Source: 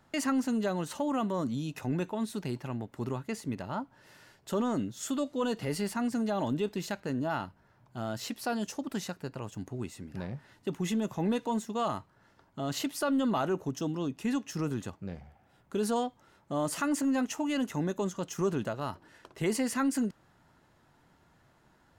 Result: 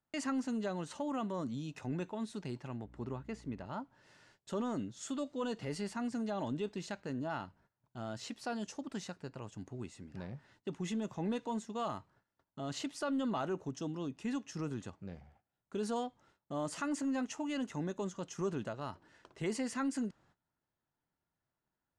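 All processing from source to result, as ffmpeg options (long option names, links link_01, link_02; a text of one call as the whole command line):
ffmpeg -i in.wav -filter_complex "[0:a]asettb=1/sr,asplit=3[link_01][link_02][link_03];[link_01]atrim=end=2.844[link_04];[link_02]atrim=start=2.84:end=3.66,asetpts=PTS-STARTPTS,afade=type=in:duration=0.004:curve=qsin,afade=type=out:start_time=0.816:duration=0.004:curve=qsin,highshelf=frequency=3900:gain=-10,aeval=exprs='val(0)+0.00316*(sin(2*PI*60*n/s)+sin(2*PI*2*60*n/s)/2+sin(2*PI*3*60*n/s)/3+sin(2*PI*4*60*n/s)/4+sin(2*PI*5*60*n/s)/5)':channel_layout=same[link_05];[link_03]atrim=start=3.656[link_06];[link_04][link_05]acrossfade=duration=0.004:curve1=hsin:curve2=qsin[link_07];[link_07][link_06]acrossfade=duration=0.004:curve1=qsin:curve2=hsin,agate=range=-19dB:threshold=-59dB:ratio=16:detection=peak,lowpass=frequency=8700:width=0.5412,lowpass=frequency=8700:width=1.3066,volume=-6.5dB" out.wav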